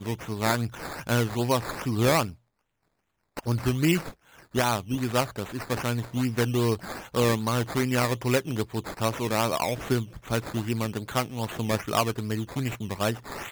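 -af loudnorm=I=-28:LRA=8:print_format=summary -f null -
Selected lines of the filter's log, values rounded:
Input Integrated:    -27.9 LUFS
Input True Peak:      -8.8 dBTP
Input LRA:             2.8 LU
Input Threshold:     -38.0 LUFS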